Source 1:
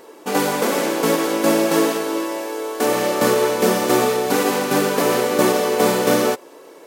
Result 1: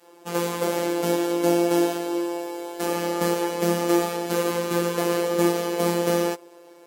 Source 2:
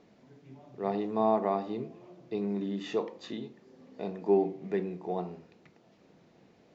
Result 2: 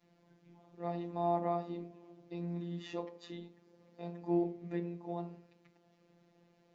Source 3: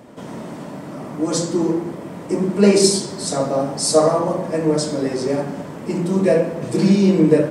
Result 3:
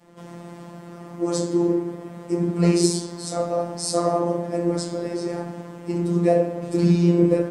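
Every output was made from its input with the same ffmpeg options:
-af "adynamicequalizer=threshold=0.0447:dfrequency=370:dqfactor=0.73:tfrequency=370:tqfactor=0.73:attack=5:release=100:ratio=0.375:range=2:mode=boostabove:tftype=bell,afftfilt=real='hypot(re,im)*cos(PI*b)':imag='0':win_size=1024:overlap=0.75,volume=-4dB"

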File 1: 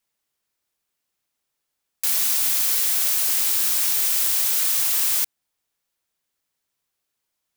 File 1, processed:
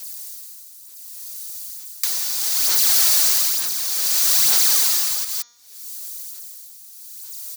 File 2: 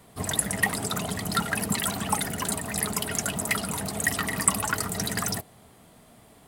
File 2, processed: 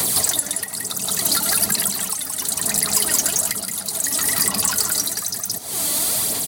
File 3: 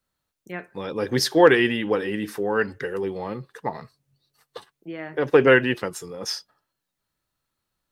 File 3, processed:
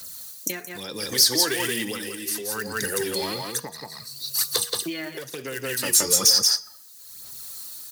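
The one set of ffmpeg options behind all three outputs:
-filter_complex "[0:a]aphaser=in_gain=1:out_gain=1:delay=3.5:decay=0.57:speed=1.1:type=sinusoidal,bandreject=f=5.2k:w=19,asplit=2[a][b];[b]aecho=0:1:173:0.473[c];[a][c]amix=inputs=2:normalize=0,acompressor=threshold=-42dB:ratio=2.5,highshelf=f=8.9k:g=9,acrossover=split=200|1700|5800[d][e][f][g];[d]acompressor=threshold=-59dB:ratio=4[h];[e]acompressor=threshold=-51dB:ratio=4[i];[f]acompressor=threshold=-58dB:ratio=4[j];[g]acompressor=threshold=-57dB:ratio=4[k];[h][i][j][k]amix=inputs=4:normalize=0,equalizer=f=4.9k:w=0.55:g=9,bandreject=f=238.2:t=h:w=4,bandreject=f=476.4:t=h:w=4,bandreject=f=714.6:t=h:w=4,bandreject=f=952.8:t=h:w=4,bandreject=f=1.191k:t=h:w=4,bandreject=f=1.4292k:t=h:w=4,bandreject=f=1.6674k:t=h:w=4,bandreject=f=1.9056k:t=h:w=4,bandreject=f=2.1438k:t=h:w=4,bandreject=f=2.382k:t=h:w=4,bandreject=f=2.6202k:t=h:w=4,bandreject=f=2.8584k:t=h:w=4,bandreject=f=3.0966k:t=h:w=4,bandreject=f=3.3348k:t=h:w=4,bandreject=f=3.573k:t=h:w=4,bandreject=f=3.8112k:t=h:w=4,bandreject=f=4.0494k:t=h:w=4,bandreject=f=4.2876k:t=h:w=4,bandreject=f=4.5258k:t=h:w=4,bandreject=f=4.764k:t=h:w=4,bandreject=f=5.0022k:t=h:w=4,bandreject=f=5.2404k:t=h:w=4,bandreject=f=5.4786k:t=h:w=4,bandreject=f=5.7168k:t=h:w=4,bandreject=f=5.955k:t=h:w=4,bandreject=f=6.1932k:t=h:w=4,bandreject=f=6.4314k:t=h:w=4,bandreject=f=6.6696k:t=h:w=4,bandreject=f=6.9078k:t=h:w=4,tremolo=f=0.66:d=0.69,highpass=f=80:p=1,aeval=exprs='0.106*sin(PI/2*6.31*val(0)/0.106)':c=same,aexciter=amount=2.2:drive=8.6:freq=4.2k,volume=1.5dB"

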